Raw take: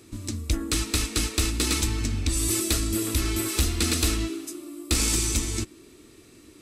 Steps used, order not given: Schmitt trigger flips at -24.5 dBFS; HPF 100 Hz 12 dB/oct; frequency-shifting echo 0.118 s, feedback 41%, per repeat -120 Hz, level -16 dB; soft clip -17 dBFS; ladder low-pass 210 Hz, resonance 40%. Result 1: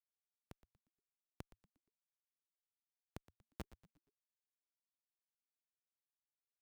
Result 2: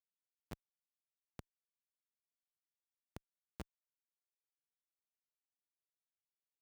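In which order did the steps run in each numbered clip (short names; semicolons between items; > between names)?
ladder low-pass > soft clip > Schmitt trigger > HPF > frequency-shifting echo; ladder low-pass > soft clip > frequency-shifting echo > Schmitt trigger > HPF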